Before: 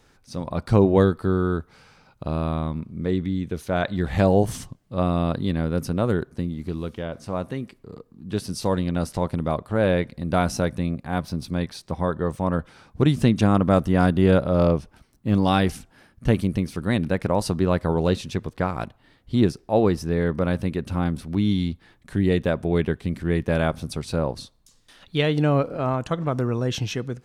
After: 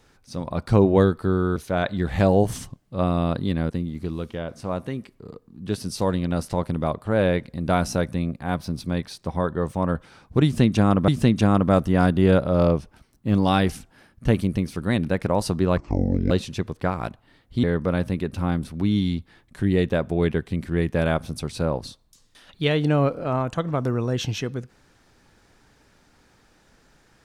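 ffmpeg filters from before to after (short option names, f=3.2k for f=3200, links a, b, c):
-filter_complex "[0:a]asplit=7[a][b][c][d][e][f][g];[a]atrim=end=1.562[h];[b]atrim=start=3.548:end=5.692[i];[c]atrim=start=6.338:end=13.722[j];[d]atrim=start=13.078:end=17.774[k];[e]atrim=start=17.77:end=18.07,asetpts=PTS-STARTPTS,asetrate=24696,aresample=44100[l];[f]atrim=start=18.066:end=19.402[m];[g]atrim=start=20.168[n];[h][i]acrossfade=d=0.004:c1=hsin:c2=hsin[o];[o][j]acrossfade=d=0.004:c1=hsin:c2=hsin[p];[p][k]acrossfade=d=0.004:c1=hsin:c2=hsin[q];[q][l]acrossfade=d=0.004:c1=hsin:c2=hsin[r];[r][m]acrossfade=d=0.004:c1=hsin:c2=hsin[s];[s][n]acrossfade=d=0.004:c1=hsin:c2=hsin"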